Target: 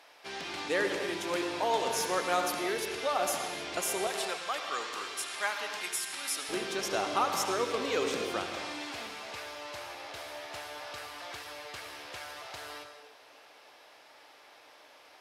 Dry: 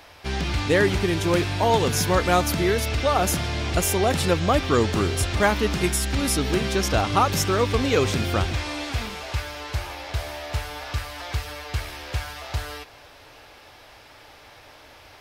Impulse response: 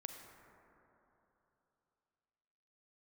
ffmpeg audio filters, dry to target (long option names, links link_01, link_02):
-filter_complex "[0:a]asetnsamples=nb_out_samples=441:pad=0,asendcmd='4.07 highpass f 1000;6.49 highpass f 350',highpass=410[link_01];[1:a]atrim=start_sample=2205,afade=type=out:start_time=0.22:duration=0.01,atrim=end_sample=10143,asetrate=24255,aresample=44100[link_02];[link_01][link_02]afir=irnorm=-1:irlink=0,volume=-6.5dB"